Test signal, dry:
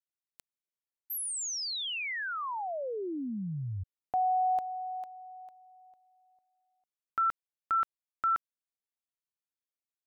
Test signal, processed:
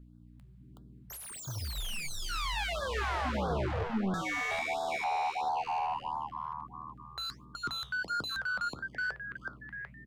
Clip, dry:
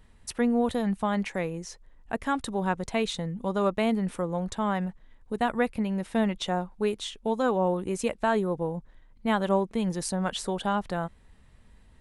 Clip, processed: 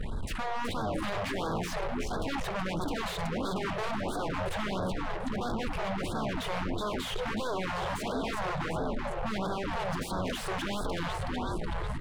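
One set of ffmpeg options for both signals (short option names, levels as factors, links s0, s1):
-filter_complex "[0:a]areverse,acompressor=threshold=0.0141:ratio=6:attack=1.9:release=78:knee=1:detection=peak,areverse,agate=range=0.355:threshold=0.00126:ratio=16:release=236:detection=peak,aeval=exprs='val(0)+0.000178*(sin(2*PI*60*n/s)+sin(2*PI*2*60*n/s)/2+sin(2*PI*3*60*n/s)/3+sin(2*PI*4*60*n/s)/4+sin(2*PI*5*60*n/s)/5)':c=same,asplit=2[s0][s1];[s1]asplit=6[s2][s3][s4][s5][s6][s7];[s2]adelay=372,afreqshift=77,volume=0.355[s8];[s3]adelay=744,afreqshift=154,volume=0.174[s9];[s4]adelay=1116,afreqshift=231,volume=0.0851[s10];[s5]adelay=1488,afreqshift=308,volume=0.0417[s11];[s6]adelay=1860,afreqshift=385,volume=0.0204[s12];[s7]adelay=2232,afreqshift=462,volume=0.01[s13];[s8][s9][s10][s11][s12][s13]amix=inputs=6:normalize=0[s14];[s0][s14]amix=inputs=2:normalize=0,aeval=exprs='0.0668*sin(PI/2*7.94*val(0)/0.0668)':c=same,equalizer=f=5800:t=o:w=0.45:g=-7,asoftclip=type=hard:threshold=0.0211,bandreject=f=58.82:t=h:w=4,bandreject=f=117.64:t=h:w=4,bandreject=f=176.46:t=h:w=4,bandreject=f=235.28:t=h:w=4,bandreject=f=294.1:t=h:w=4,bandreject=f=352.92:t=h:w=4,bandreject=f=411.74:t=h:w=4,bandreject=f=470.56:t=h:w=4,bandreject=f=529.38:t=h:w=4,bandreject=f=588.2:t=h:w=4,bandreject=f=647.02:t=h:w=4,flanger=delay=4.5:depth=9.7:regen=-81:speed=1.2:shape=sinusoidal,aemphasis=mode=reproduction:type=75kf,afftfilt=real='re*(1-between(b*sr/1024,240*pow(2400/240,0.5+0.5*sin(2*PI*1.5*pts/sr))/1.41,240*pow(2400/240,0.5+0.5*sin(2*PI*1.5*pts/sr))*1.41))':imag='im*(1-between(b*sr/1024,240*pow(2400/240,0.5+0.5*sin(2*PI*1.5*pts/sr))/1.41,240*pow(2400/240,0.5+0.5*sin(2*PI*1.5*pts/sr))*1.41))':win_size=1024:overlap=0.75,volume=2.66"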